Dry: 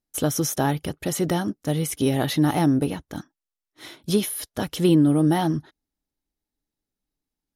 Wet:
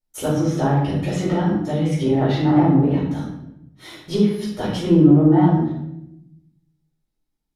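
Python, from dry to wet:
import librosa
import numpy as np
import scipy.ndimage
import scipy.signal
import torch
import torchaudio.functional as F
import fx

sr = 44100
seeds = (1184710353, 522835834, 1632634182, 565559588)

y = fx.env_lowpass_down(x, sr, base_hz=1400.0, full_db=-16.5)
y = fx.room_shoebox(y, sr, seeds[0], volume_m3=240.0, walls='mixed', distance_m=4.5)
y = y * librosa.db_to_amplitude(-9.5)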